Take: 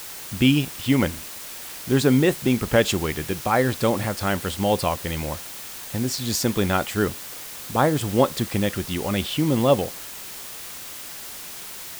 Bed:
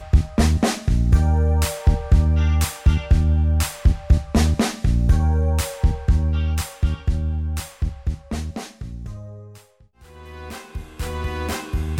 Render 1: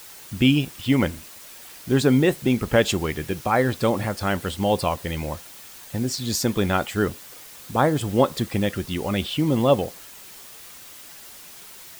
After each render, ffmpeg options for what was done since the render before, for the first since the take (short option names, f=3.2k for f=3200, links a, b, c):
-af "afftdn=nr=7:nf=-37"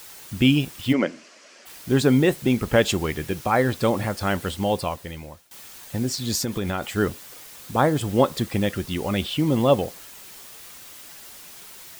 -filter_complex "[0:a]asplit=3[a][b][c];[a]afade=t=out:st=0.92:d=0.02[d];[b]highpass=f=220:w=0.5412,highpass=f=220:w=1.3066,equalizer=f=610:t=q:w=4:g=5,equalizer=f=870:t=q:w=4:g=-7,equalizer=f=3.7k:t=q:w=4:g=-9,lowpass=f=6.1k:w=0.5412,lowpass=f=6.1k:w=1.3066,afade=t=in:st=0.92:d=0.02,afade=t=out:st=1.65:d=0.02[e];[c]afade=t=in:st=1.65:d=0.02[f];[d][e][f]amix=inputs=3:normalize=0,asettb=1/sr,asplit=3[g][h][i];[g]atrim=end=6.414[j];[h]atrim=start=6.41:end=6.95,asetpts=PTS-STARTPTS,afade=t=in:d=0.004:c=qsin,afade=t=out:st=0.536:d=0.004:c=qsin,acompressor=threshold=-22dB:ratio=4:attack=3.2:release=140:knee=1:detection=peak[k];[i]atrim=start=6.946[l];[j][k]acrossfade=d=0.004:c1=hsin:c2=qsin[m];[m][l]acrossfade=d=0.004:c1=qsin:c2=hsin,asplit=2[n][o];[n]atrim=end=5.51,asetpts=PTS-STARTPTS,afade=t=out:st=4.48:d=1.03:silence=0.0944061[p];[o]atrim=start=5.51,asetpts=PTS-STARTPTS,afade=t=in:d=0.004:c=hsin:silence=0.0944061[q];[p][q]concat=n=2:v=0:a=1"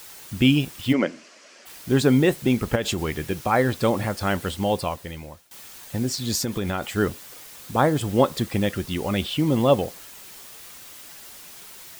-filter_complex "[0:a]asettb=1/sr,asplit=3[a][b][c];[a]atrim=end=2.754[d];[b]atrim=start=2.75:end=3.23,asetpts=PTS-STARTPTS,afade=t=in:d=0.004:c=qsin,afade=t=out:st=0.476:d=0.004:c=qsin,acompressor=threshold=-20dB:ratio=10:attack=3.2:release=140:knee=1:detection=peak[e];[c]atrim=start=3.226[f];[d][e]acrossfade=d=0.004:c1=hsin:c2=qsin[g];[g][f]acrossfade=d=0.004:c1=qsin:c2=hsin"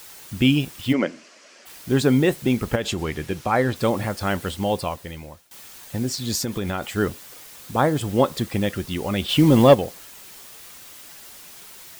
-filter_complex "[0:a]asettb=1/sr,asplit=3[a][b][c];[a]atrim=end=2.824[d];[b]atrim=start=2.82:end=3.76,asetpts=PTS-STARTPTS,afade=t=in:d=0.004:c=qsin,afade=t=out:st=0.936:d=0.004:c=qsin,highshelf=f=12k:g=-10[e];[c]atrim=start=3.756[f];[d][e]acrossfade=d=0.004:c1=hsin:c2=qsin[g];[g][f]acrossfade=d=0.004:c1=qsin:c2=hsin,asplit=3[h][i][j];[h]afade=t=out:st=9.28:d=0.02[k];[i]acontrast=82,afade=t=in:st=9.28:d=0.02,afade=t=out:st=9.73:d=0.02[l];[j]afade=t=in:st=9.73:d=0.02[m];[k][l][m]amix=inputs=3:normalize=0"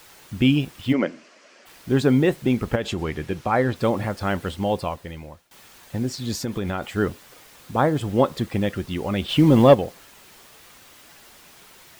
-af "highshelf=f=4.4k:g=-9.5"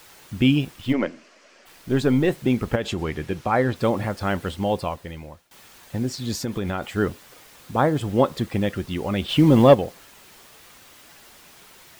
-filter_complex "[0:a]asettb=1/sr,asplit=3[a][b][c];[a]atrim=end=0.744[d];[b]atrim=start=0.74:end=2.3,asetpts=PTS-STARTPTS,afade=t=in:d=0.004:c=qsin,afade=t=out:st=1.556:d=0.004:c=qsin,aeval=exprs='if(lt(val(0),0),0.708*val(0),val(0))':c=same[e];[c]atrim=start=2.296[f];[d][e]acrossfade=d=0.004:c1=hsin:c2=qsin[g];[g][f]acrossfade=d=0.004:c1=qsin:c2=hsin"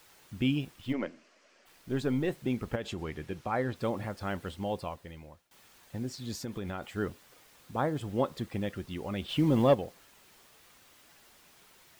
-af "volume=-10.5dB"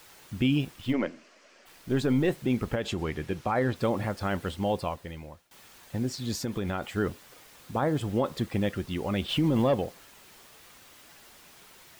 -af "acontrast=55,alimiter=limit=-17dB:level=0:latency=1:release=24"